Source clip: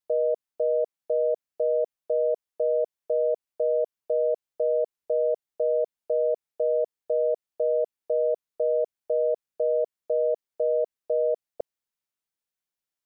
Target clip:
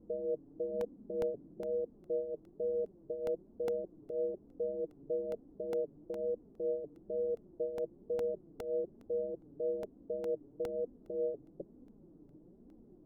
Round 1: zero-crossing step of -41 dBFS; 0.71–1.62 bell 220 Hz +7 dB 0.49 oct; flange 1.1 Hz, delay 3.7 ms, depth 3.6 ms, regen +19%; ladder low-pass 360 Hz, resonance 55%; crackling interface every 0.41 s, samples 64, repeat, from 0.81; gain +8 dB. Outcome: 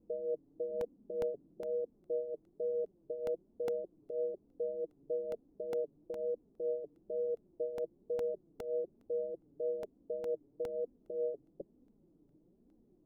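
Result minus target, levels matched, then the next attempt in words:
zero-crossing step: distortion -8 dB
zero-crossing step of -32 dBFS; 0.71–1.62 bell 220 Hz +7 dB 0.49 oct; flange 1.1 Hz, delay 3.7 ms, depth 3.6 ms, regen +19%; ladder low-pass 360 Hz, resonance 55%; crackling interface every 0.41 s, samples 64, repeat, from 0.81; gain +8 dB

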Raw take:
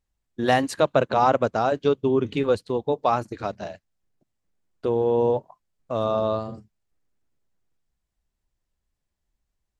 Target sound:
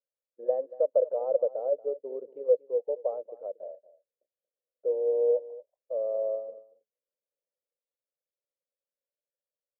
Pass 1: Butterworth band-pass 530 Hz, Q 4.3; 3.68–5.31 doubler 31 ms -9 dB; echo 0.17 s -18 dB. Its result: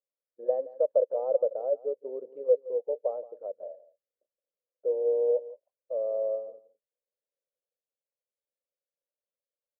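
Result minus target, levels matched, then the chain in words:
echo 62 ms early
Butterworth band-pass 530 Hz, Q 4.3; 3.68–5.31 doubler 31 ms -9 dB; echo 0.232 s -18 dB

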